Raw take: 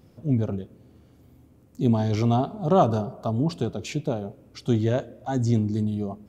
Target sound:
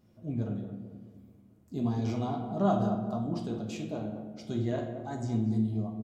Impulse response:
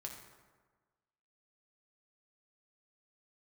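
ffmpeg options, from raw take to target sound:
-filter_complex "[1:a]atrim=start_sample=2205,asetrate=70560,aresample=44100[link_01];[0:a][link_01]afir=irnorm=-1:irlink=0,asetrate=45938,aresample=44100,asplit=2[link_02][link_03];[link_03]adelay=218,lowpass=frequency=890:poles=1,volume=-8dB,asplit=2[link_04][link_05];[link_05]adelay=218,lowpass=frequency=890:poles=1,volume=0.52,asplit=2[link_06][link_07];[link_07]adelay=218,lowpass=frequency=890:poles=1,volume=0.52,asplit=2[link_08][link_09];[link_09]adelay=218,lowpass=frequency=890:poles=1,volume=0.52,asplit=2[link_10][link_11];[link_11]adelay=218,lowpass=frequency=890:poles=1,volume=0.52,asplit=2[link_12][link_13];[link_13]adelay=218,lowpass=frequency=890:poles=1,volume=0.52[link_14];[link_02][link_04][link_06][link_08][link_10][link_12][link_14]amix=inputs=7:normalize=0,volume=-2dB"

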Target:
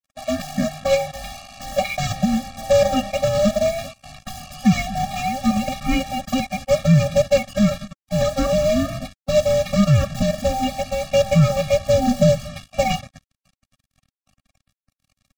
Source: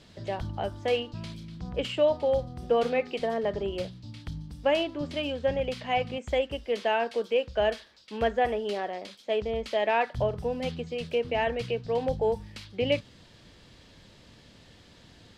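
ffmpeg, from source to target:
ffmpeg -i in.wav -filter_complex "[0:a]afftfilt=real='real(if(between(b,1,1008),(2*floor((b-1)/48)+1)*48-b,b),0)':imag='imag(if(between(b,1,1008),(2*floor((b-1)/48)+1)*48-b,b),0)*if(between(b,1,1008),-1,1)':win_size=2048:overlap=0.75,lowpass=frequency=1400:poles=1,asplit=2[link_01][link_02];[link_02]adelay=233.2,volume=-25dB,highshelf=frequency=4000:gain=-5.25[link_03];[link_01][link_03]amix=inputs=2:normalize=0,asplit=2[link_04][link_05];[link_05]acompressor=threshold=-38dB:ratio=20,volume=-2.5dB[link_06];[link_04][link_06]amix=inputs=2:normalize=0,lowshelf=frequency=90:gain=-12,aecho=1:1:5:0.63,aresample=16000,acrusher=bits=3:mode=log:mix=0:aa=0.000001,aresample=44100,agate=range=-6dB:threshold=-37dB:ratio=16:detection=peak,acrusher=bits=6:mix=0:aa=0.5,asubboost=boost=5.5:cutoff=230,alimiter=level_in=15.5dB:limit=-1dB:release=50:level=0:latency=1,afftfilt=real='re*eq(mod(floor(b*sr/1024/270),2),0)':imag='im*eq(mod(floor(b*sr/1024/270),2),0)':win_size=1024:overlap=0.75,volume=-3dB" out.wav

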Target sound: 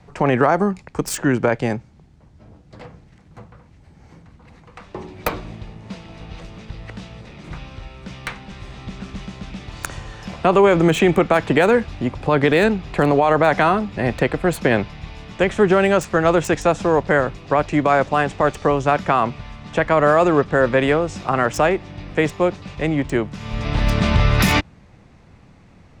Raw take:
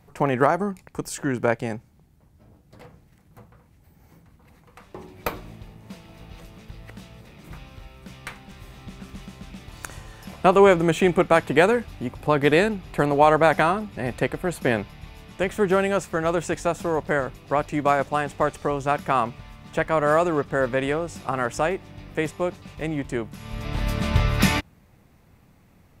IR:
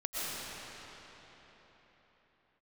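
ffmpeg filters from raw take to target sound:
-filter_complex "[0:a]acrossover=split=230|700|7700[link_01][link_02][link_03][link_04];[link_04]acrusher=bits=5:mix=0:aa=0.000001[link_05];[link_01][link_02][link_03][link_05]amix=inputs=4:normalize=0,alimiter=level_in=12dB:limit=-1dB:release=50:level=0:latency=1,volume=-4.5dB"

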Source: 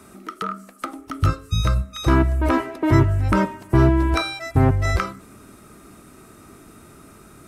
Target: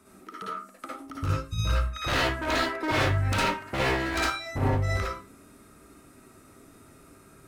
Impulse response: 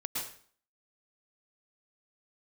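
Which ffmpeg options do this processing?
-filter_complex "[0:a]asettb=1/sr,asplit=3[link_01][link_02][link_03];[link_01]atrim=end=1.694[link_04];[link_02]atrim=start=1.69:end=4.3,asetpts=PTS-STARTPTS,afade=type=in:duration=0.004:curve=qsin,afade=type=out:start_time=2.606:duration=0.004:curve=qsin,equalizer=frequency=1600:width_type=o:width=1.5:gain=12.5[link_05];[link_03]atrim=start=4.296[link_06];[link_04][link_05]acrossfade=duration=0.004:curve1=hsin:curve2=qsin[link_07];[link_07][link_06]acrossfade=duration=0.004:curve1=qsin:curve2=hsin,aeval=exprs='0.251*(abs(mod(val(0)/0.251+3,4)-2)-1)':channel_layout=same[link_08];[1:a]atrim=start_sample=2205,asetrate=88200,aresample=44100[link_09];[link_08][link_09]afir=irnorm=-1:irlink=0,volume=-3.5dB"

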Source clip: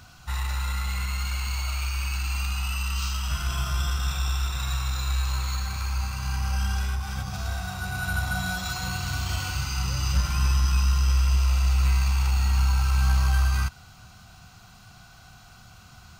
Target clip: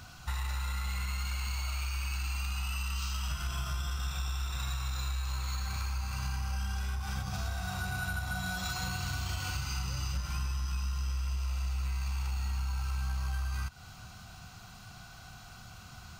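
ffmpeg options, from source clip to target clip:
ffmpeg -i in.wav -af "acompressor=threshold=-31dB:ratio=10" out.wav

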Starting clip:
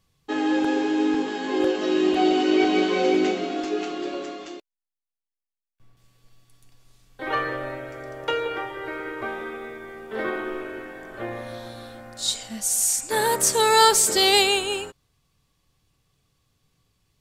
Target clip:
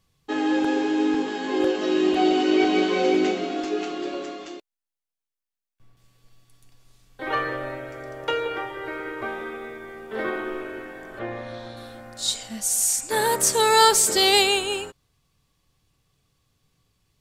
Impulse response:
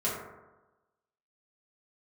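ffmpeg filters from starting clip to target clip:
-filter_complex "[0:a]asettb=1/sr,asplit=3[link_01][link_02][link_03];[link_01]atrim=end=11.194[link_04];[link_02]atrim=start=11.19:end=11.77,asetpts=PTS-STARTPTS,afade=type=in:duration=0.004:curve=qsin,afade=type=out:start_time=0.576:duration=0.004:curve=qsin,lowpass=5500[link_05];[link_03]atrim=start=11.766[link_06];[link_04][link_05]acrossfade=duration=0.004:curve1=hsin:curve2=qsin[link_07];[link_07][link_06]acrossfade=duration=0.004:curve1=qsin:curve2=hsin"

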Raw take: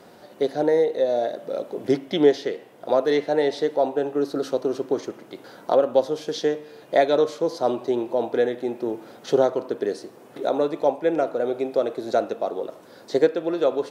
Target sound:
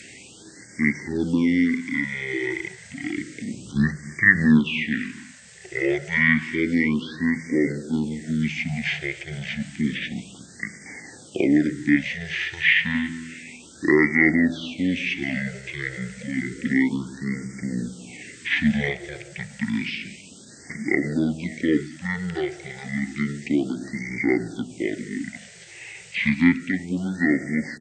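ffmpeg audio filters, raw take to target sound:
ffmpeg -i in.wav -filter_complex "[0:a]aemphasis=mode=production:type=50fm,acrossover=split=5200[link_01][link_02];[link_02]acompressor=threshold=-54dB:ratio=4:attack=1:release=60[link_03];[link_01][link_03]amix=inputs=2:normalize=0,highshelf=frequency=2600:width_type=q:width=3:gain=10,bandreject=frequency=60:width_type=h:width=6,bandreject=frequency=120:width_type=h:width=6,bandreject=frequency=180:width_type=h:width=6,bandreject=frequency=240:width_type=h:width=6,bandreject=frequency=300:width_type=h:width=6,bandreject=frequency=360:width_type=h:width=6,asetrate=48091,aresample=44100,atempo=0.917004,aecho=1:1:129:0.106,asetrate=22050,aresample=44100,afftfilt=real='re*(1-between(b*sr/1024,230*pow(3300/230,0.5+0.5*sin(2*PI*0.3*pts/sr))/1.41,230*pow(3300/230,0.5+0.5*sin(2*PI*0.3*pts/sr))*1.41))':imag='im*(1-between(b*sr/1024,230*pow(3300/230,0.5+0.5*sin(2*PI*0.3*pts/sr))/1.41,230*pow(3300/230,0.5+0.5*sin(2*PI*0.3*pts/sr))*1.41))':win_size=1024:overlap=0.75,volume=-1dB" out.wav

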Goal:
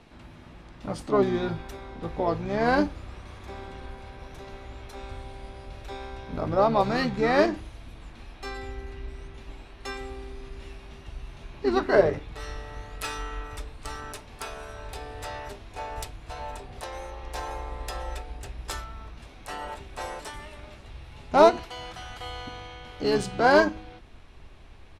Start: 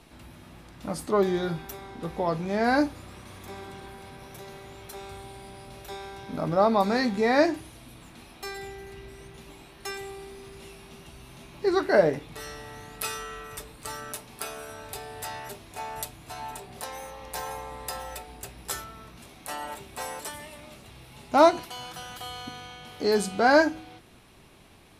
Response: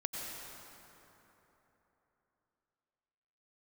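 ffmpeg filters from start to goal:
-filter_complex "[0:a]adynamicsmooth=sensitivity=2.5:basefreq=6100,asplit=2[link_01][link_02];[link_02]asetrate=29433,aresample=44100,atempo=1.49831,volume=-6dB[link_03];[link_01][link_03]amix=inputs=2:normalize=0,asubboost=boost=6:cutoff=64"

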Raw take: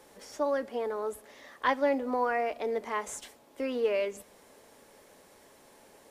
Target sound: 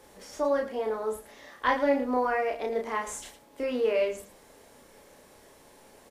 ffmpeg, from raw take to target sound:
ffmpeg -i in.wav -af "lowshelf=frequency=86:gain=9,aecho=1:1:32.07|110.8:0.708|0.251" out.wav

